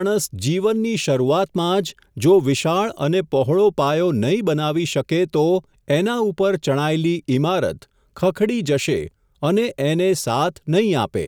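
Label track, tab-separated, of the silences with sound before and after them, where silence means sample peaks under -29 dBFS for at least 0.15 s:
1.900000	2.170000	silence
5.590000	5.900000	silence
7.820000	8.160000	silence
9.070000	9.430000	silence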